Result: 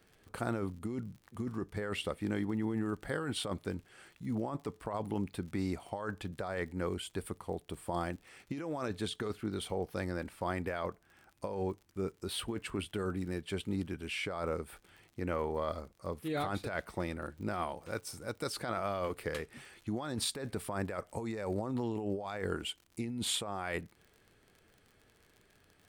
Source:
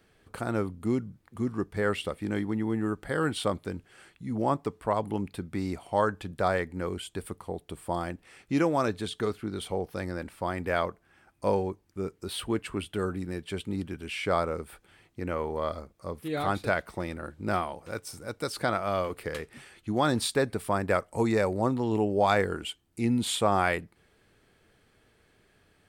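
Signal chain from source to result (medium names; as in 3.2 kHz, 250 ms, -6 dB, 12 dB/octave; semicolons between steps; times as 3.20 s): crackle 57 per s -45 dBFS; compressor with a negative ratio -30 dBFS, ratio -1; trim -5 dB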